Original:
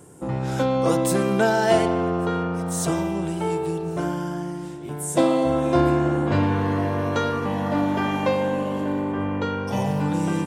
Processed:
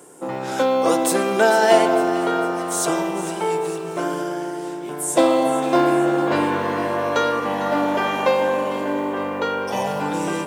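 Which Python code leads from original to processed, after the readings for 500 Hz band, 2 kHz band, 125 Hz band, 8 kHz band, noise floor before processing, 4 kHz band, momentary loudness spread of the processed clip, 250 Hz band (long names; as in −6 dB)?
+4.0 dB, +5.5 dB, −9.5 dB, +5.5 dB, −32 dBFS, +5.5 dB, 9 LU, 0.0 dB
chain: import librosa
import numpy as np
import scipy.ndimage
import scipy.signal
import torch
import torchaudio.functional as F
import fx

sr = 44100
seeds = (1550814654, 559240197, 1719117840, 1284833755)

y = scipy.signal.sosfilt(scipy.signal.butter(2, 350.0, 'highpass', fs=sr, output='sos'), x)
y = fx.quant_companded(y, sr, bits=8)
y = fx.echo_alternate(y, sr, ms=226, hz=1100.0, feedback_pct=71, wet_db=-10)
y = y * 10.0 ** (5.0 / 20.0)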